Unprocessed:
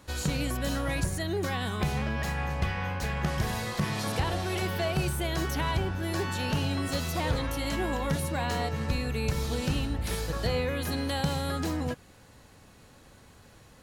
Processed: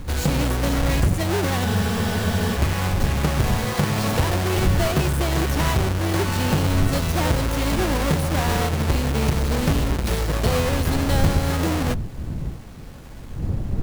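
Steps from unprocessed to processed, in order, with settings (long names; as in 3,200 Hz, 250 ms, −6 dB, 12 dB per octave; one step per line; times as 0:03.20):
each half-wave held at its own peak
wind on the microphone 110 Hz −31 dBFS
in parallel at −1 dB: downward compressor, threshold −27 dBFS, peak gain reduction 11.5 dB
on the sum: frozen spectrum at 0:01.67, 0.89 s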